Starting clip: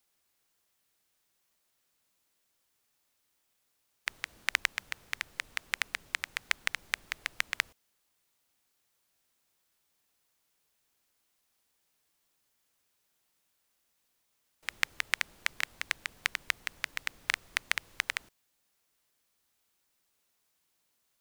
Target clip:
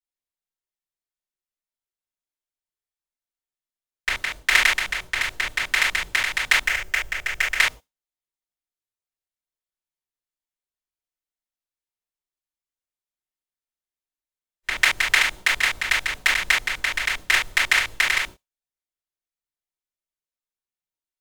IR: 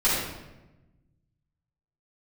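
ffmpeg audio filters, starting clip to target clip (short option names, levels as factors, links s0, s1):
-filter_complex "[0:a]agate=range=0.0224:threshold=0.00447:ratio=3:detection=peak,asettb=1/sr,asplit=3[s0][s1][s2];[s0]atrim=end=6.644[s3];[s1]atrim=start=6.64:end=7.56,asetpts=PTS-STARTPTS,afade=t=in:d=0.004:c=qsin,afade=t=out:st=0.916:d=0.004:c=qsin,equalizer=f=250:t=o:w=0.67:g=-11,equalizer=f=1000:t=o:w=0.67:g=-7,equalizer=f=4000:t=o:w=0.67:g=-9,equalizer=f=10000:t=o:w=0.67:g=-6[s4];[s2]atrim=start=7.556[s5];[s3][s4]acrossfade=d=0.004:c1=hsin:c2=qsin[s6];[s6][s5]acrossfade=d=0.004:c1=qsin:c2=hsin[s7];[1:a]atrim=start_sample=2205,atrim=end_sample=6174,asetrate=74970,aresample=44100[s8];[s7][s8]afir=irnorm=-1:irlink=0,volume=1.58"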